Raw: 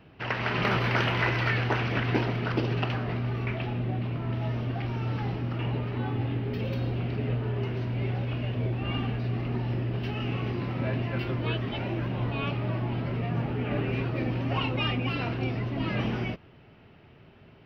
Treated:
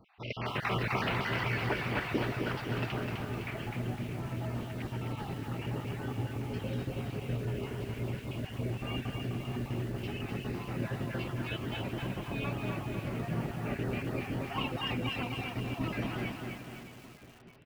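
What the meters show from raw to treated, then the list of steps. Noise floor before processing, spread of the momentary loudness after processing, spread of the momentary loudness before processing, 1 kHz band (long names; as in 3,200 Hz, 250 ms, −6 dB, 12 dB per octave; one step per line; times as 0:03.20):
−54 dBFS, 6 LU, 5 LU, −4.5 dB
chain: time-frequency cells dropped at random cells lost 38%
repeating echo 620 ms, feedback 46%, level −14 dB
feedback echo at a low word length 255 ms, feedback 55%, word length 8 bits, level −4 dB
level −4.5 dB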